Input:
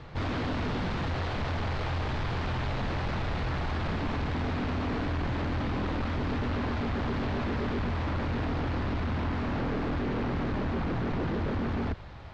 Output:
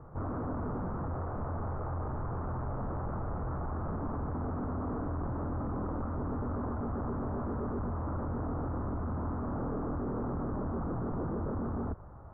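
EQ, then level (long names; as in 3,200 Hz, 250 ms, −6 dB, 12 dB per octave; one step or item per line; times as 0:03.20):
elliptic low-pass filter 1,300 Hz, stop band 80 dB
−3.5 dB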